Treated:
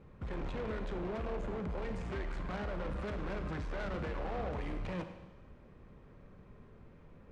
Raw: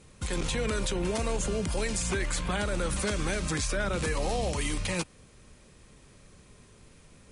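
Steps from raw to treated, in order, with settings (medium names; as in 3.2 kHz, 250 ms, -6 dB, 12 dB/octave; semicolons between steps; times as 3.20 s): low-pass 1.4 kHz 12 dB/octave; saturation -35 dBFS, distortion -8 dB; Schroeder reverb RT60 1.2 s, combs from 33 ms, DRR 7.5 dB; trim -1 dB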